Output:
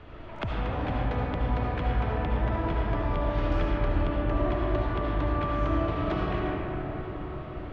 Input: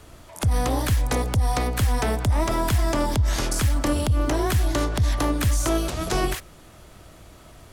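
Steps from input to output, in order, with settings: low-pass 3 kHz 24 dB/octave; compression 10:1, threshold -31 dBFS, peak gain reduction 15 dB; reverberation RT60 5.3 s, pre-delay 34 ms, DRR -5 dB

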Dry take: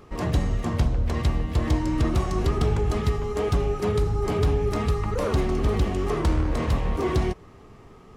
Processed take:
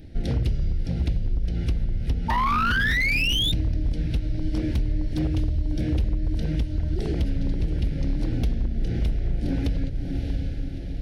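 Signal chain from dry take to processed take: Butterworth band-stop 1.4 kHz, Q 1; tone controls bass +11 dB, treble +7 dB; hum notches 60/120/180 Hz; echo that smears into a reverb 472 ms, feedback 49%, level -10 dB; compression 6:1, threshold -20 dBFS, peak gain reduction 13 dB; painted sound rise, 1.69–2.61 s, 1.2–5 kHz -22 dBFS; wavefolder -16.5 dBFS; speed mistake 45 rpm record played at 33 rpm; peaking EQ 7.4 kHz -14 dB 0.48 oct

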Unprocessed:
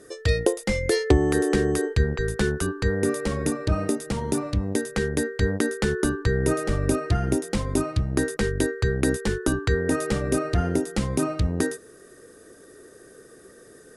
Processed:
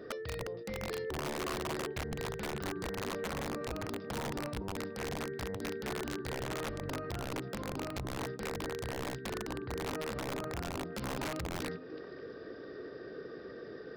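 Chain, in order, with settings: compression 20:1, threshold -34 dBFS, peak gain reduction 22.5 dB; hum notches 50/100/150/200/250/300/350/400 Hz; repeats whose band climbs or falls 146 ms, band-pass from 150 Hz, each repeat 1.4 oct, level -5 dB; peak limiter -30 dBFS, peak gain reduction 11 dB; high-pass 79 Hz 6 dB/octave; tilt shelf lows +3 dB, about 1.4 kHz; resampled via 11.025 kHz; treble shelf 2.3 kHz -2.5 dB, from 9.65 s -9.5 dB, from 10.92 s +3 dB; integer overflow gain 31.5 dB; loudspeaker Doppler distortion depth 0.11 ms; trim +1 dB

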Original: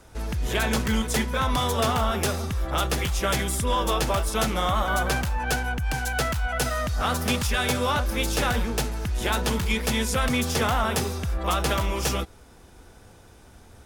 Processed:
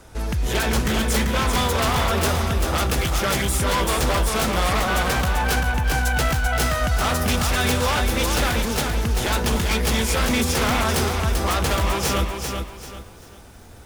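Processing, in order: wavefolder -21 dBFS; bit-crushed delay 390 ms, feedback 35%, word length 9-bit, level -5 dB; trim +4.5 dB

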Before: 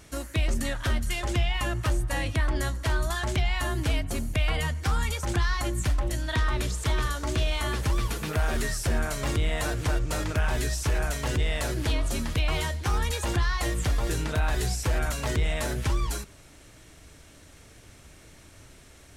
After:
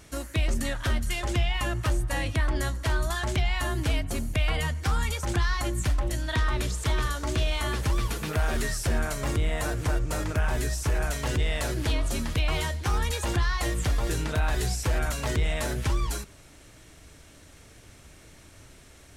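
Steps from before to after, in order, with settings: 9.13–11.01 s: peaking EQ 3.6 kHz -4 dB 1.4 oct

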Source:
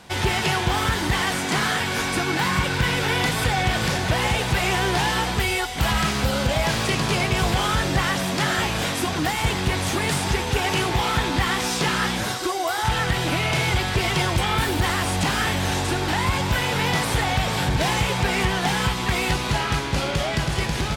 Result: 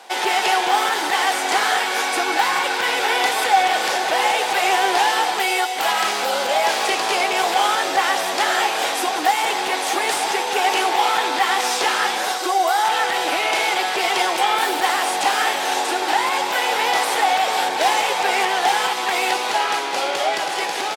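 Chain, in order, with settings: high-pass 370 Hz 24 dB/octave; peaking EQ 790 Hz +10 dB 0.22 oct; delay 187 ms -13.5 dB; trim +3 dB

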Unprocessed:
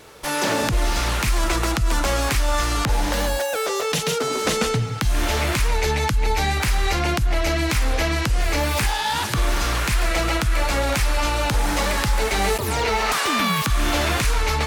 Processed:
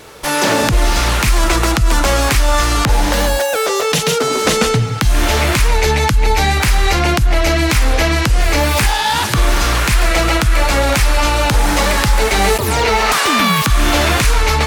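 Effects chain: trim +7.5 dB

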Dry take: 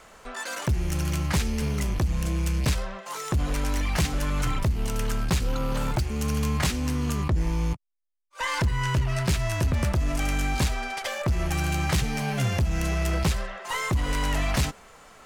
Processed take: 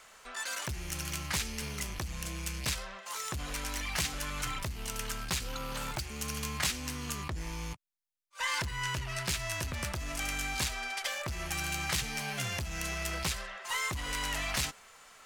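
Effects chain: tilt shelf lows -7 dB, about 910 Hz; trim -7.5 dB

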